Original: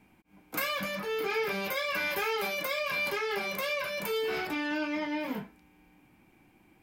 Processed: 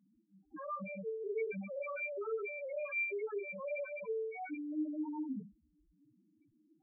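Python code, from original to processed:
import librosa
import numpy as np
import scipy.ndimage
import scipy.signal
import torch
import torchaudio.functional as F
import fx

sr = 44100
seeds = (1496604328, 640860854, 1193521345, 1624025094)

y = scipy.signal.medfilt(x, 9)
y = fx.doubler(y, sr, ms=42.0, db=-4)
y = fx.spec_topn(y, sr, count=2)
y = F.gain(torch.from_numpy(y), -2.5).numpy()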